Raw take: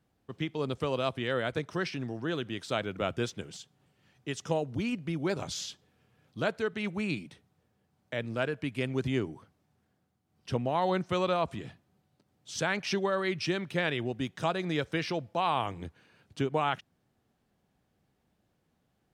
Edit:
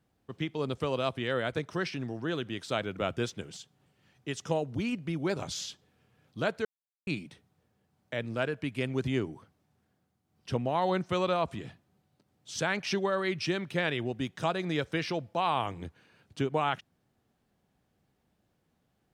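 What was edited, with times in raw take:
0:06.65–0:07.07: silence

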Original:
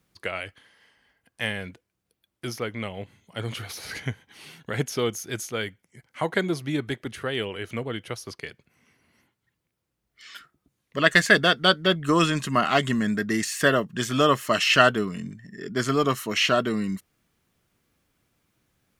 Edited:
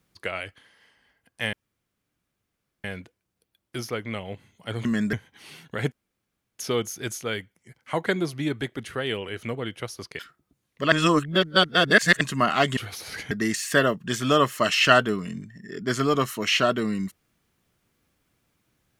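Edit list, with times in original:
0:01.53: splice in room tone 1.31 s
0:03.54–0:04.08: swap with 0:12.92–0:13.20
0:04.87: splice in room tone 0.67 s
0:08.47–0:10.34: remove
0:11.07–0:12.36: reverse

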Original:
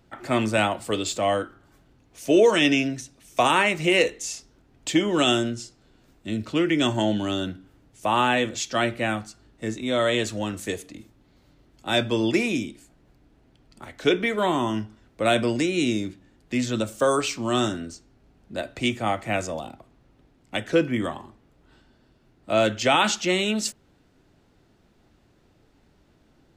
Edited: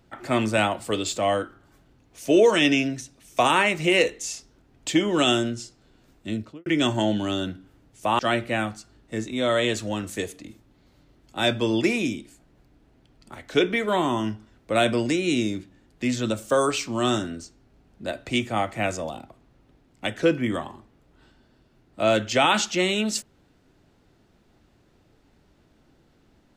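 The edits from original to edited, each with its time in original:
0:06.28–0:06.66: fade out and dull
0:08.19–0:08.69: remove

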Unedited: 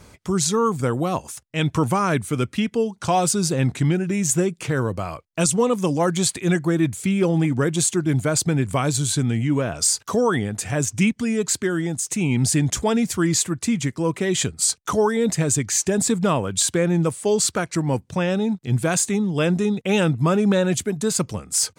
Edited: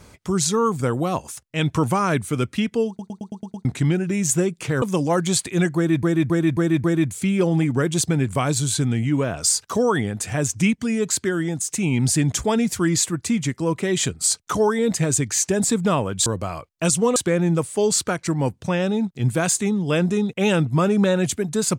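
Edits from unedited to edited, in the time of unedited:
0:02.88: stutter in place 0.11 s, 7 plays
0:04.82–0:05.72: move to 0:16.64
0:06.66–0:06.93: repeat, 5 plays
0:07.83–0:08.39: remove

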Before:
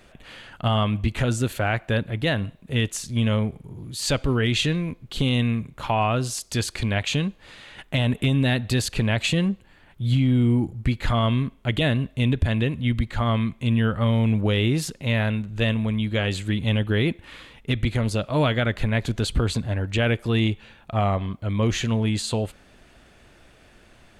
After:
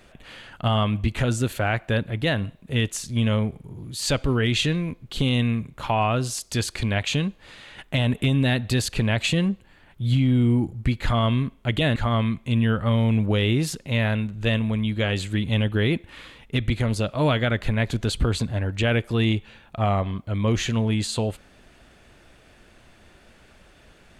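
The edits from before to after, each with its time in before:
0:11.96–0:13.11: remove

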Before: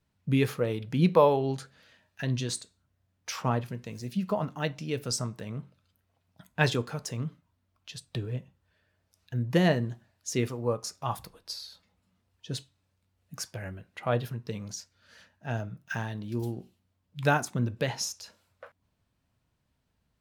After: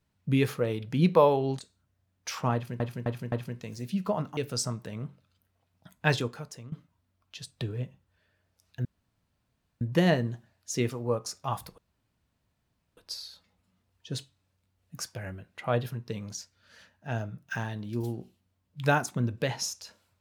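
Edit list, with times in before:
0:01.59–0:02.60: remove
0:03.55–0:03.81: repeat, 4 plays
0:04.60–0:04.91: remove
0:06.61–0:07.26: fade out, to −15.5 dB
0:09.39: splice in room tone 0.96 s
0:11.36: splice in room tone 1.19 s

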